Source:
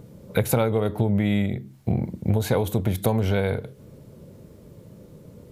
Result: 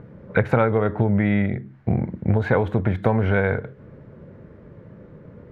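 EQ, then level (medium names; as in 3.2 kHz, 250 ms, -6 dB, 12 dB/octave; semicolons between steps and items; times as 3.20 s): resonant low-pass 1.7 kHz, resonance Q 2.6; +2.0 dB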